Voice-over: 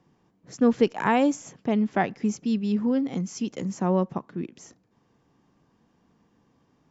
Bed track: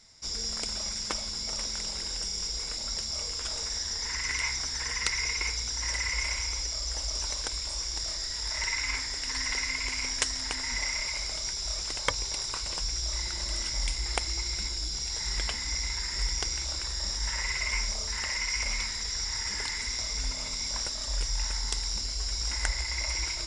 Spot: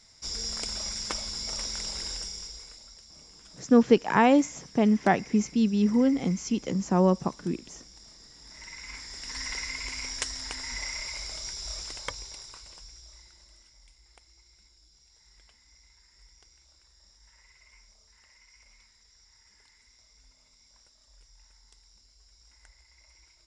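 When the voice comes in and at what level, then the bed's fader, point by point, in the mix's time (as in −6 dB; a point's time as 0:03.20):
3.10 s, +1.5 dB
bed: 0:02.10 −0.5 dB
0:02.98 −18.5 dB
0:08.36 −18.5 dB
0:09.41 −4 dB
0:11.80 −4 dB
0:13.80 −28 dB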